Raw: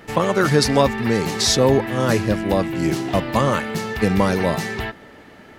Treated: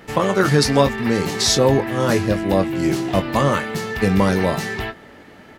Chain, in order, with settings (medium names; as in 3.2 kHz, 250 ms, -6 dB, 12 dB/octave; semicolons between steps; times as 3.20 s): doubling 21 ms -8.5 dB